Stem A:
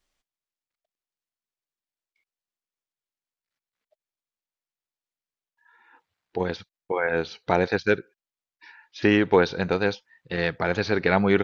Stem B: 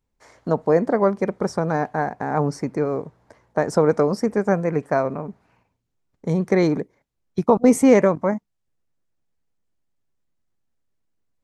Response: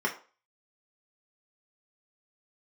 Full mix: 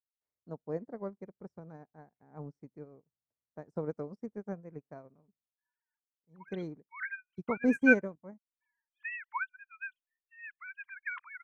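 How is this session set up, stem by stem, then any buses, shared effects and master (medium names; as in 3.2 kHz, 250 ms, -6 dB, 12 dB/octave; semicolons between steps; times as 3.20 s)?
+2.5 dB, 0.00 s, no send, formants replaced by sine waves; steep high-pass 960 Hz 96 dB/octave; de-esser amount 90%
6.27 s -15.5 dB -> 6.54 s -5.5 dB, 0.00 s, no send, bass shelf 470 Hz +11.5 dB; auto duck -11 dB, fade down 0.25 s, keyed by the first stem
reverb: none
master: upward expansion 2.5:1, over -43 dBFS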